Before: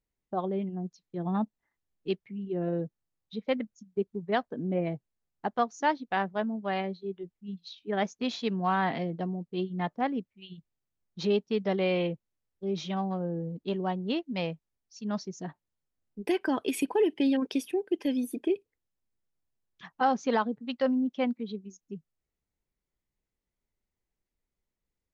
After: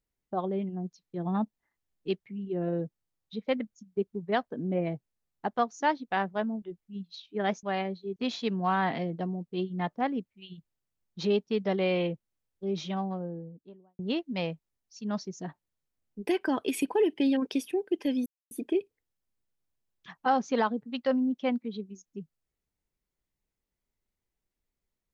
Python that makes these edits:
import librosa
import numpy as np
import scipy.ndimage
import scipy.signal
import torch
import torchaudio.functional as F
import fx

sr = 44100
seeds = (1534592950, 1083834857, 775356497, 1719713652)

y = fx.studio_fade_out(x, sr, start_s=12.76, length_s=1.23)
y = fx.edit(y, sr, fx.move(start_s=6.62, length_s=0.53, to_s=8.16),
    fx.insert_silence(at_s=18.26, length_s=0.25), tone=tone)